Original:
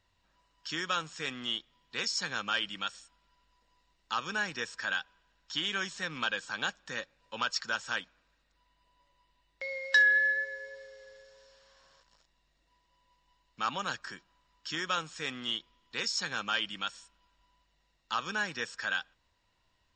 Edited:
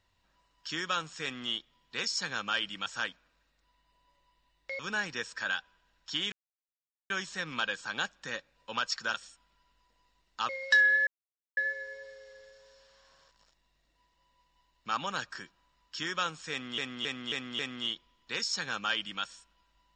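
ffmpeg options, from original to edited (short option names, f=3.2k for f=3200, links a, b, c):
-filter_complex "[0:a]asplit=11[a][b][c][d][e][f][g][h][i][j][k];[a]atrim=end=2.862[l];[b]atrim=start=7.778:end=9.712[m];[c]atrim=start=4.208:end=5.74,asetpts=PTS-STARTPTS,afade=t=out:st=1.528:d=0.004:c=hsin,apad=pad_dur=0.78[n];[d]atrim=start=5.74:end=7.782,asetpts=PTS-STARTPTS,afade=t=in:d=0.004:c=hsin[o];[e]atrim=start=2.858:end=4.212[p];[f]atrim=start=9.708:end=10.29,asetpts=PTS-STARTPTS,afade=t=out:st=0.578:d=0.004:c=hsin,apad=pad_dur=0.5[q];[g]atrim=start=10.29:end=15.502,asetpts=PTS-STARTPTS,afade=t=in:d=0.004:c=hsin[r];[h]atrim=start=15.228:end=15.502[s];[i]atrim=start=15.228:end=15.502[t];[j]atrim=start=15.228:end=15.502[u];[k]atrim=start=15.228[v];[l][m]acrossfade=d=0.004:c1=hsin:c2=hsin[w];[n][o]concat=n=2:v=0:a=1[x];[w][x]acrossfade=d=0.004:c1=hsin:c2=hsin[y];[y][p]acrossfade=d=0.004:c1=hsin:c2=hsin[z];[q][r]concat=n=2:v=0:a=1[aa];[z][aa]acrossfade=d=0.004:c1=hsin:c2=hsin[ab];[ab][s]acrossfade=d=0.004:c1=hsin:c2=hsin[ac];[ac][t]acrossfade=d=0.004:c1=hsin:c2=hsin[ad];[ad][u]acrossfade=d=0.004:c1=hsin:c2=hsin[ae];[ae][v]acrossfade=d=0.004:c1=hsin:c2=hsin"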